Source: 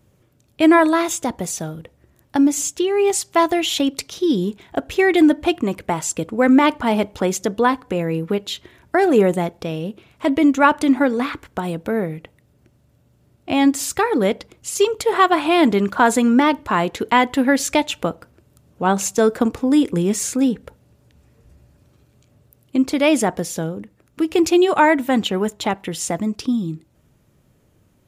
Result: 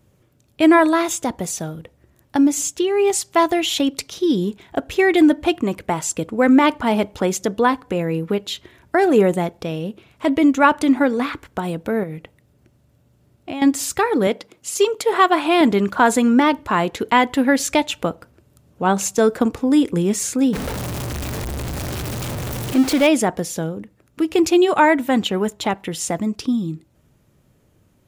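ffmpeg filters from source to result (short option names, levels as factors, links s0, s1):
-filter_complex "[0:a]asettb=1/sr,asplit=3[s0][s1][s2];[s0]atrim=end=12.034[s3];[s1]atrim=start=12.03:end=13.62,asetpts=PTS-STARTPTS,afade=t=in:d=0.004:c=qsin,afade=t=out:st=1.586:d=0.004:c=qsin,acompressor=threshold=0.0631:ratio=6:attack=3.2:release=140:knee=1:detection=peak[s4];[s2]atrim=start=13.616[s5];[s3][s4]acrossfade=d=0.004:c1=hsin:c2=qsin[s6];[s6][s5]acrossfade=d=0.004:c1=qsin:c2=hsin,asettb=1/sr,asplit=3[s7][s8][s9];[s7]atrim=end=14.274[s10];[s8]atrim=start=14.27:end=15.61,asetpts=PTS-STARTPTS,afade=t=in:d=0.004:c=qsin,afade=t=out:st=1.336:d=0.004:c=qsin,highpass=180[s11];[s9]atrim=start=15.606[s12];[s10][s11]acrossfade=d=0.004:c1=hsin:c2=qsin[s13];[s13][s12]acrossfade=d=0.004:c1=qsin:c2=hsin,asettb=1/sr,asplit=3[s14][s15][s16];[s14]atrim=end=20.534[s17];[s15]atrim=start=20.53:end=23.07,asetpts=PTS-STARTPTS,afade=t=in:d=0.004:c=qsin,afade=t=out:st=2.536:d=0.004:c=qsin,aeval=exprs='val(0)+0.5*0.0944*sgn(val(0))':c=same[s18];[s16]atrim=start=23.066[s19];[s17][s18]acrossfade=d=0.004:c1=hsin:c2=qsin[s20];[s20][s19]acrossfade=d=0.004:c1=qsin:c2=hsin"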